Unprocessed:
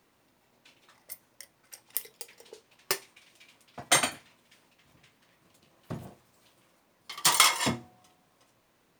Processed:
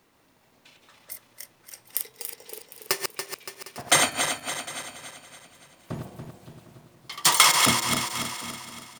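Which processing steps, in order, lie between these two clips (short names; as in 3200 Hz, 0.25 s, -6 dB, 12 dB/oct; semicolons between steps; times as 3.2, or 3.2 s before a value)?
regenerating reverse delay 0.142 s, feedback 71%, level -5 dB; echo 0.755 s -19 dB; gain +3.5 dB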